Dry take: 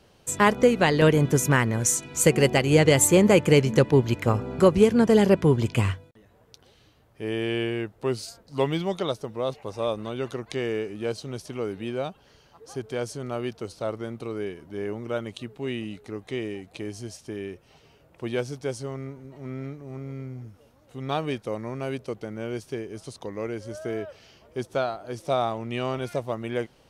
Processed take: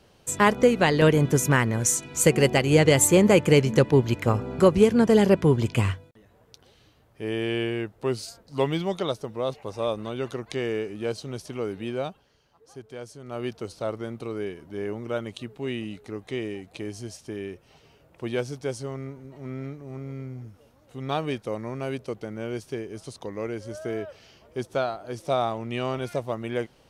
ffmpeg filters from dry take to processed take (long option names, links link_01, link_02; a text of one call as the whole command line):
ffmpeg -i in.wav -filter_complex "[0:a]asplit=3[link_01][link_02][link_03];[link_01]atrim=end=12.28,asetpts=PTS-STARTPTS,afade=type=out:start_time=12.07:duration=0.21:silence=0.354813[link_04];[link_02]atrim=start=12.28:end=13.24,asetpts=PTS-STARTPTS,volume=-9dB[link_05];[link_03]atrim=start=13.24,asetpts=PTS-STARTPTS,afade=type=in:duration=0.21:silence=0.354813[link_06];[link_04][link_05][link_06]concat=n=3:v=0:a=1" out.wav